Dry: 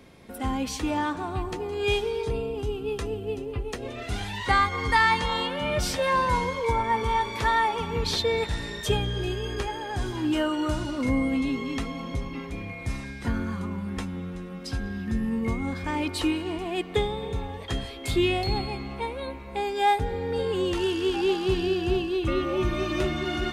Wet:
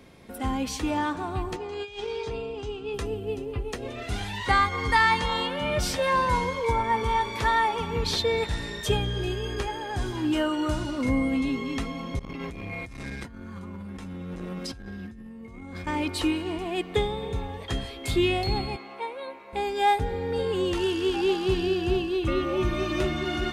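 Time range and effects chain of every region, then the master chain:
0:01.56–0:02.94: low-pass filter 7,100 Hz 24 dB per octave + low-shelf EQ 450 Hz −8.5 dB + compressor whose output falls as the input rises −32 dBFS, ratio −0.5
0:12.19–0:15.87: compressor whose output falls as the input rises −37 dBFS + saturating transformer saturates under 360 Hz
0:18.76–0:19.53: high-pass filter 470 Hz + high-shelf EQ 3,500 Hz −7.5 dB
whole clip: no processing

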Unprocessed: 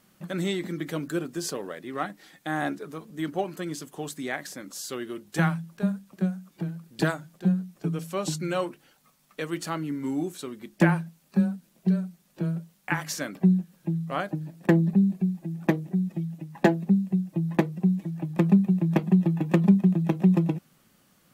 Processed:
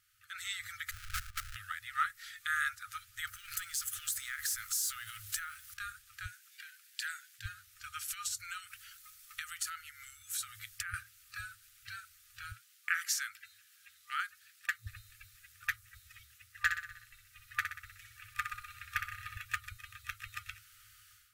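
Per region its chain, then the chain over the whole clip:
0:00.91–0:01.56: lower of the sound and its delayed copy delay 5.3 ms + sample-rate reduction 1,000 Hz, jitter 20% + output level in coarse steps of 15 dB
0:03.27–0:05.74: mu-law and A-law mismatch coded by mu + high-shelf EQ 6,400 Hz +8 dB + downward compressor 12 to 1, threshold −33 dBFS
0:06.26–0:07.46: Butterworth high-pass 1,500 Hz 48 dB per octave + downward compressor 4 to 1, threshold −38 dBFS
0:08.08–0:10.94: high-shelf EQ 5,300 Hz +6.5 dB + downward compressor 5 to 1, threshold −35 dBFS
0:12.52–0:14.87: high-pass filter 250 Hz + high-shelf EQ 7,700 Hz −3.5 dB + phaser with its sweep stopped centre 320 Hz, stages 4
0:16.53–0:19.37: dynamic equaliser 1,100 Hz, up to +5 dB, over −39 dBFS, Q 0.79 + repeating echo 62 ms, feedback 51%, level −6.5 dB
whole clip: brick-wall band-stop 110–1,200 Hz; automatic gain control gain up to 13.5 dB; dynamic equaliser 3,000 Hz, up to −7 dB, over −36 dBFS, Q 0.76; level −8 dB

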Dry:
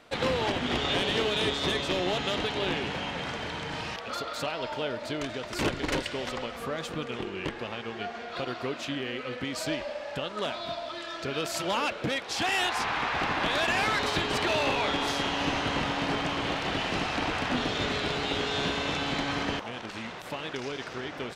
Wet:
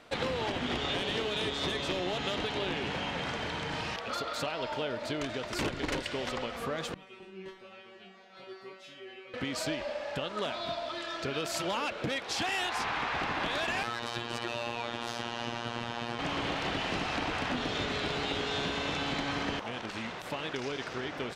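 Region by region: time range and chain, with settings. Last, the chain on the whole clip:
0:06.94–0:09.34: notch filter 7,300 Hz, Q 27 + tuned comb filter 190 Hz, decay 0.4 s, mix 100%
0:13.83–0:16.19: high-pass filter 44 Hz + notch filter 2,100 Hz, Q 10 + phases set to zero 118 Hz
whole clip: high-shelf EQ 12,000 Hz −3.5 dB; downward compressor, threshold −29 dBFS

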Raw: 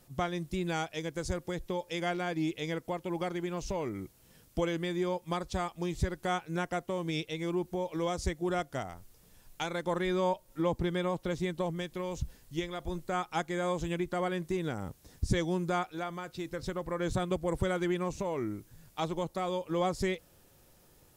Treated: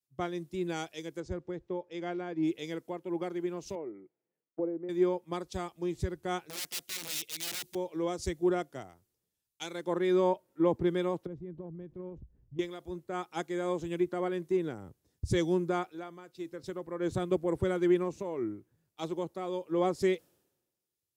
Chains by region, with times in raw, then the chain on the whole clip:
0:01.20–0:02.43: low-pass filter 7,300 Hz 24 dB per octave + high-shelf EQ 3,000 Hz −8.5 dB
0:03.75–0:04.89: treble cut that deepens with the level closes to 750 Hz, closed at −28.5 dBFS + loudspeaker in its box 230–2,200 Hz, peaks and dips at 240 Hz −6 dB, 1,100 Hz −8 dB, 1,600 Hz −6 dB
0:06.49–0:07.75: low-shelf EQ 72 Hz +4 dB + wrap-around overflow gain 31.5 dB
0:11.26–0:12.59: spectral tilt −4.5 dB per octave + downward compressor 16 to 1, threshold −32 dBFS
whole clip: high-pass filter 98 Hz 12 dB per octave; parametric band 360 Hz +8 dB 0.76 octaves; multiband upward and downward expander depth 100%; level −4.5 dB

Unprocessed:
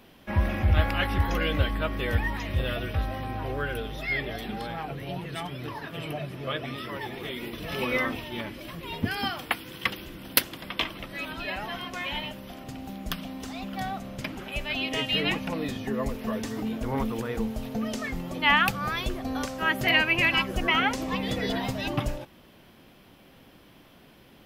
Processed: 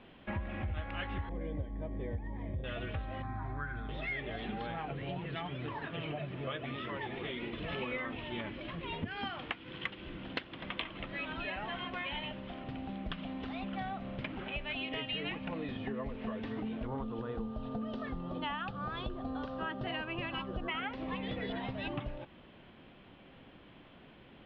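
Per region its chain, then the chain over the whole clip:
0:01.29–0:02.64: variable-slope delta modulation 32 kbit/s + moving average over 32 samples
0:03.22–0:03.89: low-pass filter 4,700 Hz + phaser with its sweep stopped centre 1,200 Hz, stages 4
0:16.86–0:20.68: parametric band 2,200 Hz −14.5 dB 0.6 octaves + steady tone 1,200 Hz −46 dBFS
whole clip: Butterworth low-pass 3,500 Hz 36 dB per octave; downward compressor 6 to 1, threshold −33 dBFS; level −2 dB

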